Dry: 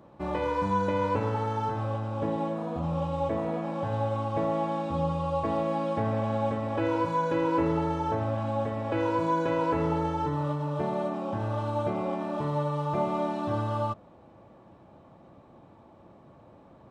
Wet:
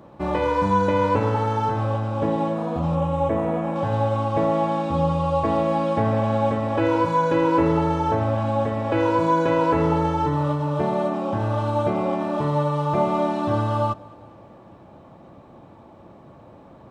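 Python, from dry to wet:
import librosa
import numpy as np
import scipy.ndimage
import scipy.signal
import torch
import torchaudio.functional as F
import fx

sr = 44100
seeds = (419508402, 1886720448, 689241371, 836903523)

p1 = fx.peak_eq(x, sr, hz=4600.0, db=-11.5, octaves=0.69, at=(2.95, 3.76))
p2 = p1 + fx.echo_feedback(p1, sr, ms=208, feedback_pct=58, wet_db=-24.0, dry=0)
y = p2 * librosa.db_to_amplitude(7.0)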